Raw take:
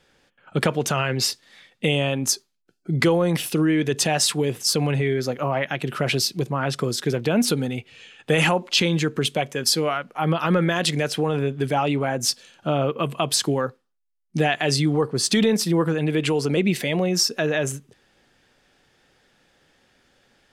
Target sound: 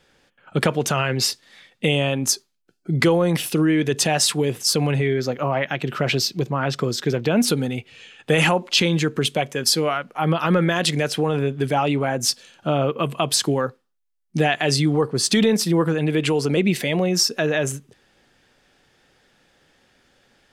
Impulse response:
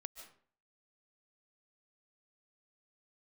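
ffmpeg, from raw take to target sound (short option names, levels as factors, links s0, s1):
-filter_complex "[0:a]asettb=1/sr,asplit=3[s0][s1][s2];[s0]atrim=end=5.064[s3];[s1]atrim=start=5.06:end=7.37,asetpts=PTS-STARTPTS,afade=t=in:d=0.004:c=qsin,afade=t=out:st=2.306:d=0.004:c=qsin,equalizer=f=10000:t=o:w=0.44:g=-12[s4];[s2]atrim=start=7.366[s5];[s3][s4]acrossfade=d=0.004:c1=hsin:c2=qsin[s6];[s6][s5]acrossfade=d=0.004:c1=qsin:c2=hsin,volume=1.19"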